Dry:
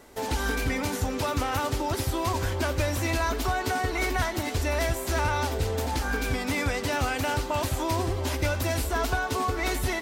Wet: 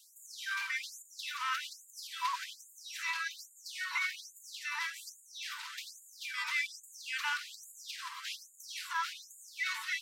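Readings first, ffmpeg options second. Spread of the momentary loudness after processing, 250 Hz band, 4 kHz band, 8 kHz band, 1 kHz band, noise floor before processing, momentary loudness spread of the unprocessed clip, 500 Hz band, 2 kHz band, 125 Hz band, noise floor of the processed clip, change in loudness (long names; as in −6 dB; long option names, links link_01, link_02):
13 LU, below −40 dB, −5.5 dB, −9.5 dB, −12.0 dB, −33 dBFS, 2 LU, below −40 dB, −5.5 dB, below −40 dB, −61 dBFS, −10.0 dB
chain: -filter_complex "[0:a]acrossover=split=5300[link_01][link_02];[link_02]acompressor=threshold=-53dB:ratio=4:attack=1:release=60[link_03];[link_01][link_03]amix=inputs=2:normalize=0,lowshelf=frequency=130:gain=10,alimiter=limit=-17.5dB:level=0:latency=1,afftfilt=real='re*gte(b*sr/1024,870*pow(6800/870,0.5+0.5*sin(2*PI*1.2*pts/sr)))':imag='im*gte(b*sr/1024,870*pow(6800/870,0.5+0.5*sin(2*PI*1.2*pts/sr)))':win_size=1024:overlap=0.75"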